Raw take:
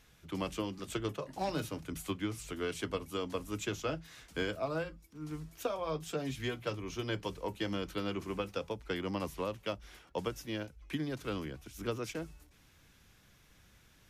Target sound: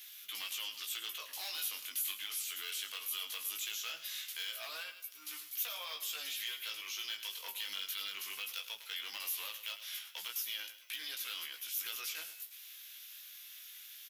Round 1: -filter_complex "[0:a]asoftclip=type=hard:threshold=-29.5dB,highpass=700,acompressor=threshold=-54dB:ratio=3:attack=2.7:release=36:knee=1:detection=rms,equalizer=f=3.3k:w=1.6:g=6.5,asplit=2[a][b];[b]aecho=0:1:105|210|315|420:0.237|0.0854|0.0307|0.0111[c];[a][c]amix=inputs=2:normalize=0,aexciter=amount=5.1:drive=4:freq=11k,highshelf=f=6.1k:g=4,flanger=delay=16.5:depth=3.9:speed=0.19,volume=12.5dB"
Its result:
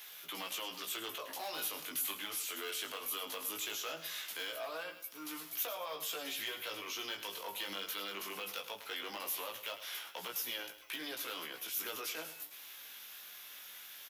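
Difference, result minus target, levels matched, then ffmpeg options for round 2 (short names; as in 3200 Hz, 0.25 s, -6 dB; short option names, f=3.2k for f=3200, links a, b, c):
500 Hz band +14.5 dB
-filter_complex "[0:a]asoftclip=type=hard:threshold=-29.5dB,highpass=2.4k,acompressor=threshold=-54dB:ratio=3:attack=2.7:release=36:knee=1:detection=rms,equalizer=f=3.3k:w=1.6:g=6.5,asplit=2[a][b];[b]aecho=0:1:105|210|315|420:0.237|0.0854|0.0307|0.0111[c];[a][c]amix=inputs=2:normalize=0,aexciter=amount=5.1:drive=4:freq=11k,highshelf=f=6.1k:g=4,flanger=delay=16.5:depth=3.9:speed=0.19,volume=12.5dB"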